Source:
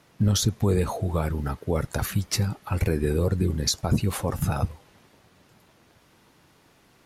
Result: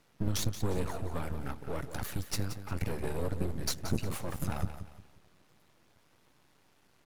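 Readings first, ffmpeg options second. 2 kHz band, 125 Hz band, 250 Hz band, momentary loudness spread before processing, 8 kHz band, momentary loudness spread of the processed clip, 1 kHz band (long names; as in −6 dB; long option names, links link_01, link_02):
−7.0 dB, −11.5 dB, −10.5 dB, 5 LU, −9.5 dB, 6 LU, −8.5 dB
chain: -af "aeval=exprs='max(val(0),0)':channel_layout=same,aecho=1:1:177|354|531|708:0.282|0.093|0.0307|0.0101,volume=-5dB"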